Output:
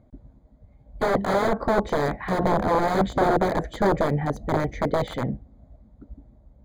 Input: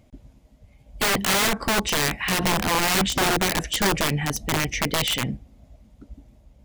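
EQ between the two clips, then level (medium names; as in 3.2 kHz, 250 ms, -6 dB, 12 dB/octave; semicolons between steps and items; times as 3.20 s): dynamic bell 570 Hz, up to +8 dB, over -40 dBFS, Q 1.3; boxcar filter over 16 samples; 0.0 dB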